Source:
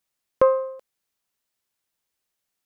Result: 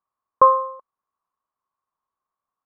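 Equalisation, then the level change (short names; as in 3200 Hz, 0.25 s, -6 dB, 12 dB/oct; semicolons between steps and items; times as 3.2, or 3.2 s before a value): synth low-pass 1100 Hz, resonance Q 12; -5.5 dB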